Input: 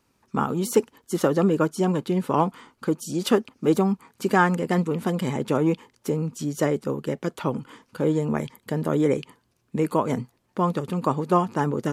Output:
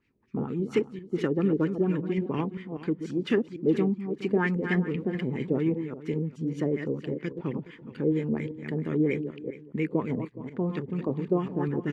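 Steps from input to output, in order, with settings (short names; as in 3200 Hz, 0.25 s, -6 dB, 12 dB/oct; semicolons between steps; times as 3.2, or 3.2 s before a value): reverse delay 0.198 s, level -8 dB; band shelf 890 Hz -14 dB; LFO low-pass sine 4.3 Hz 550–2300 Hz; high shelf 3800 Hz +9 dB; echo 0.419 s -16 dB; gain -4.5 dB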